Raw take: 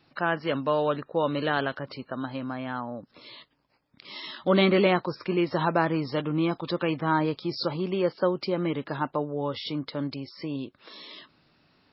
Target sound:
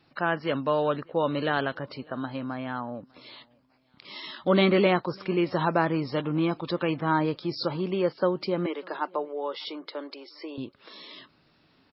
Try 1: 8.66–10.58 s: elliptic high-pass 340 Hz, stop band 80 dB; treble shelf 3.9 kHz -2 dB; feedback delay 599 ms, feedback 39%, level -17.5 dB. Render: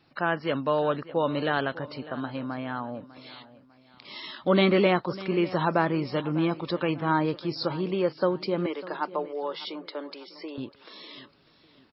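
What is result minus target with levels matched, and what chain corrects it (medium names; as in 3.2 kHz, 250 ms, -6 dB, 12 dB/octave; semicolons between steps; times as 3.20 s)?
echo-to-direct +10.5 dB
8.66–10.58 s: elliptic high-pass 340 Hz, stop band 80 dB; treble shelf 3.9 kHz -2 dB; feedback delay 599 ms, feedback 39%, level -28 dB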